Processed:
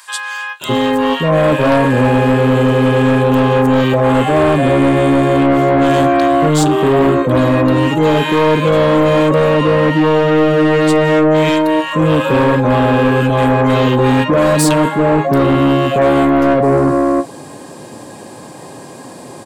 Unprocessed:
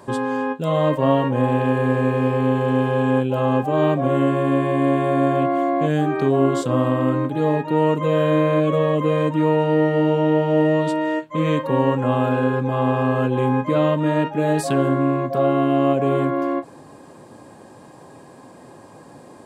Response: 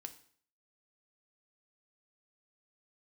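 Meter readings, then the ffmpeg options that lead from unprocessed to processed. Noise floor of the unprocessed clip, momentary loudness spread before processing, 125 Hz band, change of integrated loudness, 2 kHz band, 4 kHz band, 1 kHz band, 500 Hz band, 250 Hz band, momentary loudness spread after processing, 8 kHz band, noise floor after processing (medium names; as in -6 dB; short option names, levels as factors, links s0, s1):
-44 dBFS, 3 LU, +6.5 dB, +7.5 dB, +11.0 dB, +13.5 dB, +8.0 dB, +7.5 dB, +7.5 dB, 2 LU, no reading, -33 dBFS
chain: -filter_complex "[0:a]highpass=81,highshelf=f=2100:g=7,asplit=2[s0][s1];[s1]asoftclip=type=hard:threshold=0.266,volume=0.708[s2];[s0][s2]amix=inputs=2:normalize=0,acrossover=split=1300[s3][s4];[s3]adelay=610[s5];[s5][s4]amix=inputs=2:normalize=0,aeval=exprs='0.794*(cos(1*acos(clip(val(0)/0.794,-1,1)))-cos(1*PI/2))+0.2*(cos(5*acos(clip(val(0)/0.794,-1,1)))-cos(5*PI/2))':c=same,volume=0.891"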